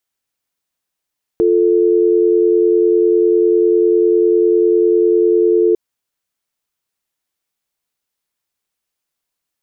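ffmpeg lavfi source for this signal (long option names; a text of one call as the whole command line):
ffmpeg -f lavfi -i "aevalsrc='0.251*(sin(2*PI*350*t)+sin(2*PI*440*t))':duration=4.35:sample_rate=44100" out.wav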